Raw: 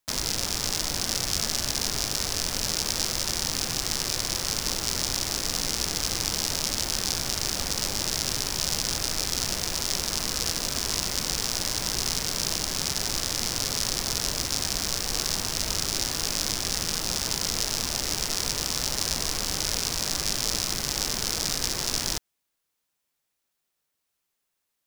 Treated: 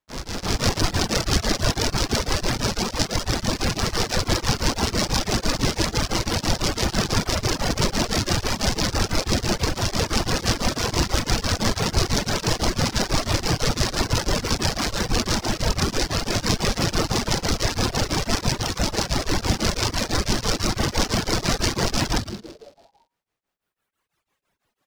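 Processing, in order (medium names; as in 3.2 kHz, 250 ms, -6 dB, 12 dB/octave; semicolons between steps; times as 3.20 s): low-pass 4 kHz 6 dB/octave; treble shelf 2.4 kHz -9 dB; frequency-shifting echo 112 ms, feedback 58%, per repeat -120 Hz, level -4 dB; level rider gain up to 15 dB; reverb removal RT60 1.8 s; tremolo of two beating tones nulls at 6 Hz; trim +3 dB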